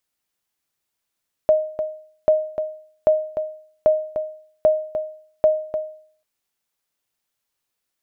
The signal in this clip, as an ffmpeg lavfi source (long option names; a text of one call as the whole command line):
ffmpeg -f lavfi -i "aevalsrc='0.398*(sin(2*PI*621*mod(t,0.79))*exp(-6.91*mod(t,0.79)/0.54)+0.355*sin(2*PI*621*max(mod(t,0.79)-0.3,0))*exp(-6.91*max(mod(t,0.79)-0.3,0)/0.54))':duration=4.74:sample_rate=44100" out.wav